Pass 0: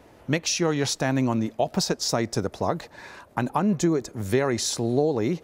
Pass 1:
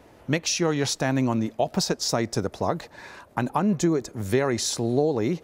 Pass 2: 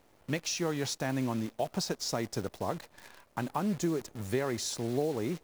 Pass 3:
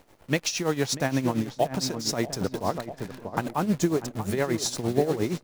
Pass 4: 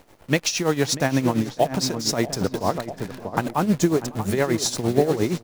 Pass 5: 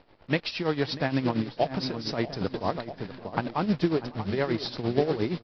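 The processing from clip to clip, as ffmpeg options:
-af anull
-af "acrusher=bits=7:dc=4:mix=0:aa=0.000001,volume=-8.5dB"
-filter_complex "[0:a]asplit=2[a][b];[b]adelay=640,lowpass=f=1.5k:p=1,volume=-8.5dB,asplit=2[c][d];[d]adelay=640,lowpass=f=1.5k:p=1,volume=0.51,asplit=2[e][f];[f]adelay=640,lowpass=f=1.5k:p=1,volume=0.51,asplit=2[g][h];[h]adelay=640,lowpass=f=1.5k:p=1,volume=0.51,asplit=2[i][j];[j]adelay=640,lowpass=f=1.5k:p=1,volume=0.51,asplit=2[k][l];[l]adelay=640,lowpass=f=1.5k:p=1,volume=0.51[m];[a][c][e][g][i][k][m]amix=inputs=7:normalize=0,tremolo=f=8.6:d=0.73,volume=9dB"
-af "aecho=1:1:553:0.0631,volume=4.5dB"
-af "aresample=11025,acrusher=bits=5:mode=log:mix=0:aa=0.000001,aresample=44100,volume=-5.5dB" -ar 32000 -c:a aac -b:a 32k

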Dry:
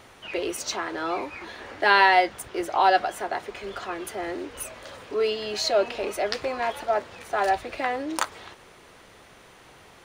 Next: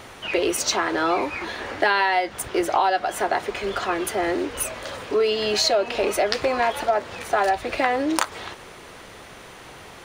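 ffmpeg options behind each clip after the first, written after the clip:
-af "acompressor=threshold=-25dB:ratio=12,volume=8.5dB"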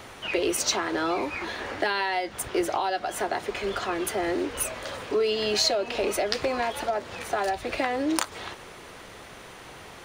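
-filter_complex "[0:a]acrossover=split=410|3000[a][b][c];[b]acompressor=threshold=-28dB:ratio=2[d];[a][d][c]amix=inputs=3:normalize=0,volume=-2dB"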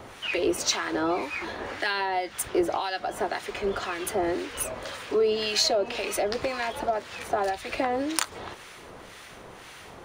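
-filter_complex "[0:a]acrossover=split=1200[a][b];[a]aeval=exprs='val(0)*(1-0.7/2+0.7/2*cos(2*PI*1.9*n/s))':c=same[c];[b]aeval=exprs='val(0)*(1-0.7/2-0.7/2*cos(2*PI*1.9*n/s))':c=same[d];[c][d]amix=inputs=2:normalize=0,volume=2.5dB"

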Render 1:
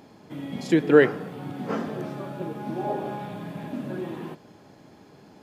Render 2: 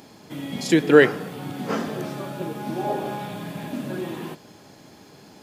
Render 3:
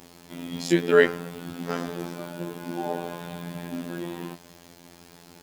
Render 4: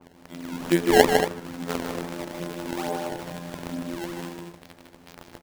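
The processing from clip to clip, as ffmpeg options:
-af "highshelf=f=2.9k:g=11,volume=2dB"
-filter_complex "[0:a]acrossover=split=120[a][b];[a]acompressor=mode=upward:threshold=-56dB:ratio=2.5[c];[c][b]amix=inputs=2:normalize=0,acrusher=bits=7:mix=0:aa=0.000001,afftfilt=real='hypot(re,im)*cos(PI*b)':imag='0':win_size=2048:overlap=0.75"
-filter_complex "[0:a]acrusher=samples=21:mix=1:aa=0.000001:lfo=1:lforange=33.6:lforate=2.3,asplit=2[a][b];[b]aecho=0:1:154.5|230.3:0.562|0.316[c];[a][c]amix=inputs=2:normalize=0,adynamicequalizer=threshold=0.0126:dfrequency=2500:dqfactor=0.7:tfrequency=2500:tqfactor=0.7:attack=5:release=100:ratio=0.375:range=2.5:mode=cutabove:tftype=highshelf"

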